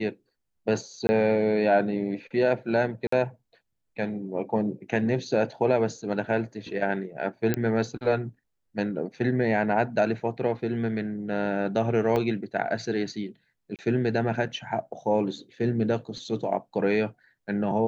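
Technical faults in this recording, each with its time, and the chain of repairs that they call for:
0:01.07–0:01.09: drop-out 20 ms
0:03.07–0:03.12: drop-out 54 ms
0:07.54: click −12 dBFS
0:12.16: drop-out 2.3 ms
0:13.76–0:13.79: drop-out 28 ms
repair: click removal
repair the gap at 0:01.07, 20 ms
repair the gap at 0:03.07, 54 ms
repair the gap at 0:12.16, 2.3 ms
repair the gap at 0:13.76, 28 ms

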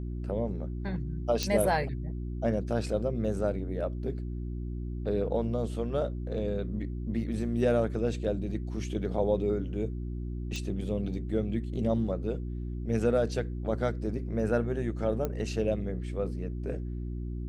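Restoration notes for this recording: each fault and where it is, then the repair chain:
mains hum 60 Hz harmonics 6 −35 dBFS
0:01.43: click −15 dBFS
0:10.56: click
0:15.25: click −18 dBFS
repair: click removal
hum removal 60 Hz, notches 6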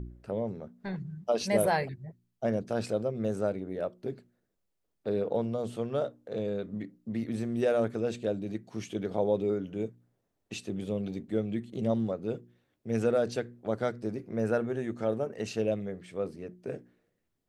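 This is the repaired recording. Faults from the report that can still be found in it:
none of them is left

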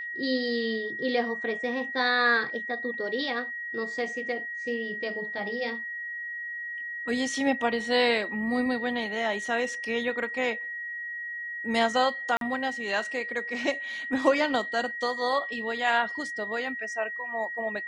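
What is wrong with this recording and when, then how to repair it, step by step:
whistle 1,900 Hz −33 dBFS
0:12.37–0:12.41: drop-out 42 ms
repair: notch filter 1,900 Hz, Q 30
repair the gap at 0:12.37, 42 ms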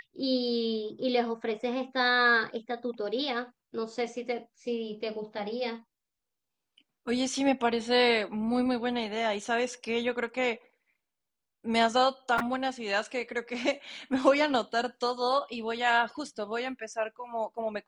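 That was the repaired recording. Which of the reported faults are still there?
none of them is left

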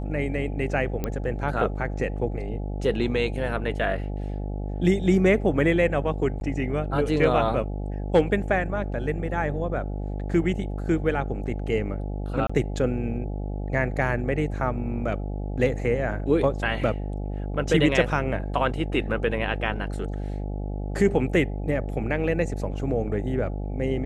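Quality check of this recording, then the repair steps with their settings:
mains buzz 50 Hz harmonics 17 −30 dBFS
0:01.04: click −14 dBFS
0:06.40–0:06.41: drop-out 10 ms
0:12.47–0:12.49: drop-out 25 ms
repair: click removal
hum removal 50 Hz, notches 17
repair the gap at 0:06.40, 10 ms
repair the gap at 0:12.47, 25 ms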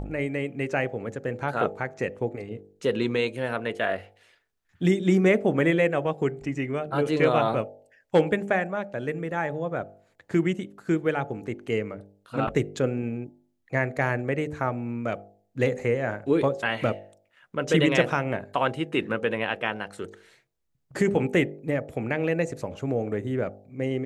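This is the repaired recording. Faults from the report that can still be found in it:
none of them is left

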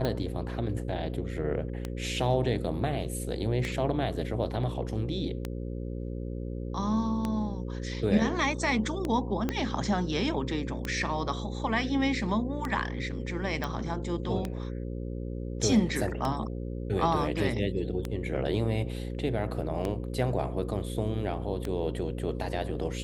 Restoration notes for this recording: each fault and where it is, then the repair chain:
mains buzz 60 Hz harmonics 9 −35 dBFS
scratch tick 33 1/3 rpm −17 dBFS
0:09.49: click −15 dBFS
0:13.64: click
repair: click removal
hum removal 60 Hz, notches 9

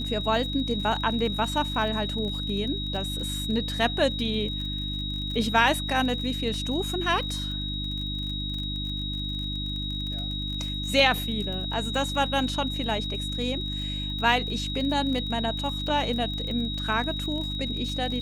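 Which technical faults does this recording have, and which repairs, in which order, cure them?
surface crackle 35 per second −33 dBFS
mains hum 50 Hz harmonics 6 −33 dBFS
whistle 3,800 Hz −32 dBFS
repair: click removal
hum removal 50 Hz, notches 6
notch filter 3,800 Hz, Q 30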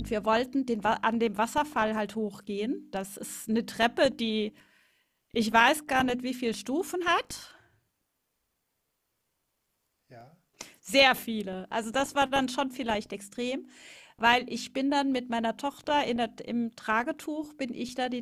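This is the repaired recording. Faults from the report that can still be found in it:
none of them is left

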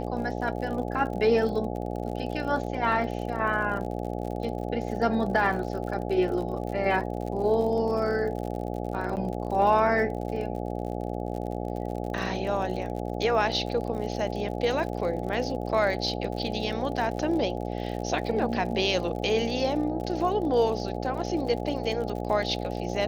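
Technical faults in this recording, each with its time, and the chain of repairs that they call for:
mains buzz 60 Hz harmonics 14 −32 dBFS
surface crackle 54 per second −35 dBFS
0:09.16–0:09.17: drop-out 9 ms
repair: click removal
hum removal 60 Hz, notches 14
repair the gap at 0:09.16, 9 ms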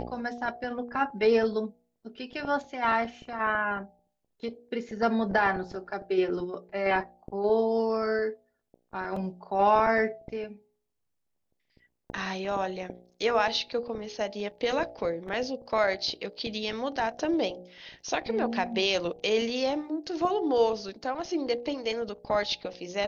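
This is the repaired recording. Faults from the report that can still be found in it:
none of them is left

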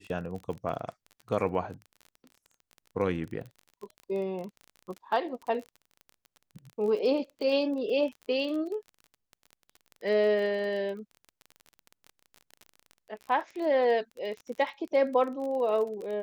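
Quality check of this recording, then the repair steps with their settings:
surface crackle 27 per second −36 dBFS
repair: click removal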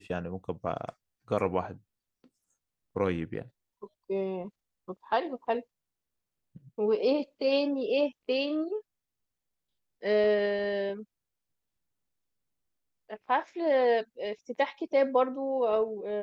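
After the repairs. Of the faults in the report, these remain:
none of them is left

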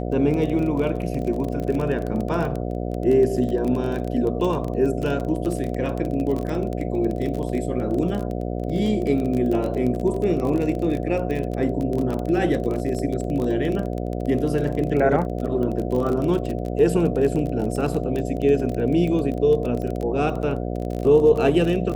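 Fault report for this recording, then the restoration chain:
mains buzz 60 Hz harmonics 12 −27 dBFS
surface crackle 24 per second −25 dBFS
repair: click removal
hum removal 60 Hz, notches 12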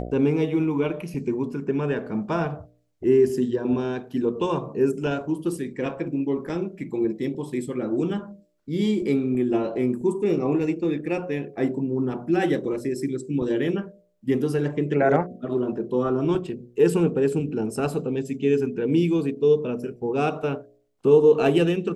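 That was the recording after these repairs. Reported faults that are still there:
none of them is left

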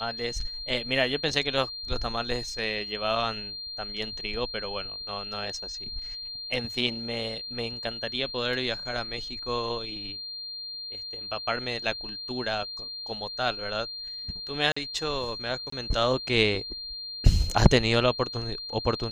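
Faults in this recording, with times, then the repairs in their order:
whistle 4,200 Hz −35 dBFS
0:14.72–0:14.77: drop-out 45 ms
0:15.70–0:15.72: drop-out 24 ms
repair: notch filter 4,200 Hz, Q 30
repair the gap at 0:14.72, 45 ms
repair the gap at 0:15.70, 24 ms

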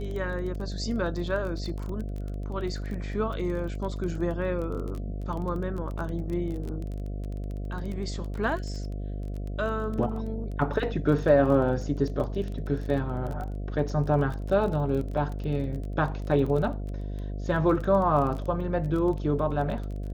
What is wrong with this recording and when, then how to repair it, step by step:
mains buzz 50 Hz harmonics 14 −33 dBFS
surface crackle 21 per second −33 dBFS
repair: click removal
hum removal 50 Hz, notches 14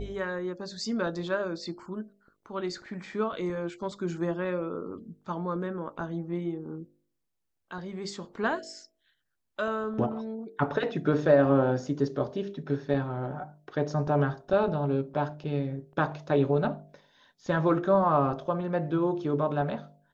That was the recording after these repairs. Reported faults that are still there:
none of them is left

